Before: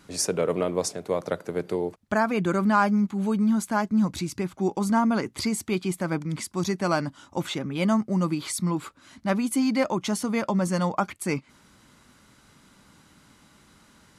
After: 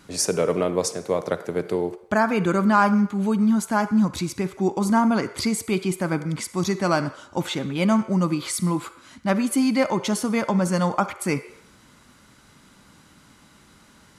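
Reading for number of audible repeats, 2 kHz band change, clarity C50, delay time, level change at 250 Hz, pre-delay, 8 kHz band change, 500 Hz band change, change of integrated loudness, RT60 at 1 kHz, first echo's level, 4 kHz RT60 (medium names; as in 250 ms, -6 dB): no echo, +3.5 dB, 12.5 dB, no echo, +3.0 dB, 40 ms, +3.0 dB, +3.0 dB, +3.0 dB, 0.75 s, no echo, 0.70 s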